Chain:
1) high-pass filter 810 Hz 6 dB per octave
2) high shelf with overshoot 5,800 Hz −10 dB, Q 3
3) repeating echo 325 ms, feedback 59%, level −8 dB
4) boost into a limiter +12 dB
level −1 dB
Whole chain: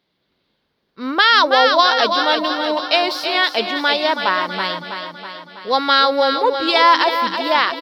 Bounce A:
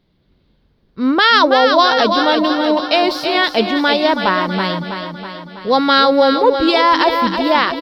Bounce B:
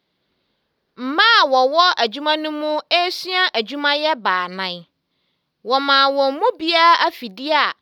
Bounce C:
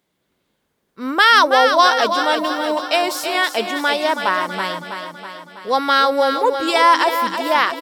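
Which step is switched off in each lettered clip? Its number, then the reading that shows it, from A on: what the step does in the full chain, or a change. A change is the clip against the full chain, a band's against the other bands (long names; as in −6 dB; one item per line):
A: 1, 125 Hz band +11.5 dB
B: 3, change in momentary loudness spread −3 LU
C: 2, 8 kHz band +8.5 dB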